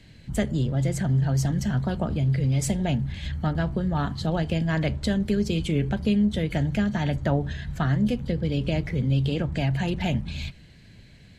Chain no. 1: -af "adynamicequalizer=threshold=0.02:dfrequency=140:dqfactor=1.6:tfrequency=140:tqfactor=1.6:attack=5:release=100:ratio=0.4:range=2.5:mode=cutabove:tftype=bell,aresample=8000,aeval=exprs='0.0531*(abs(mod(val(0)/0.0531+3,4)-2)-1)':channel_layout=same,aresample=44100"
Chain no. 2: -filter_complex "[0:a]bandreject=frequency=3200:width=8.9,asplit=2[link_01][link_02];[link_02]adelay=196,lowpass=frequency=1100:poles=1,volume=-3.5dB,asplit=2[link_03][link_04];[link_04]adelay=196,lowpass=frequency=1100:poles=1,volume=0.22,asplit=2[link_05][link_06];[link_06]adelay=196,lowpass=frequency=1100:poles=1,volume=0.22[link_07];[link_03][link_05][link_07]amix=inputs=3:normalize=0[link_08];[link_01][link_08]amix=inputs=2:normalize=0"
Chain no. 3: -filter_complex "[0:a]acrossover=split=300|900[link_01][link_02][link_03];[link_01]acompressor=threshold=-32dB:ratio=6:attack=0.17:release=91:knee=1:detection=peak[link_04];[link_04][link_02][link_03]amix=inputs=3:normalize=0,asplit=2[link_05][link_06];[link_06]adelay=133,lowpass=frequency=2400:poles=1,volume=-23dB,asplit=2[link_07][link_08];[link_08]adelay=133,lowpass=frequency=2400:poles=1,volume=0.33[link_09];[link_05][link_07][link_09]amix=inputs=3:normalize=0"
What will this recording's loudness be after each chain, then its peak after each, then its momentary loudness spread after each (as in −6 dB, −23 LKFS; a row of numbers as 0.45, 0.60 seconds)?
−32.0, −24.5, −31.0 LKFS; −21.5, −10.0, −14.5 dBFS; 3, 5, 5 LU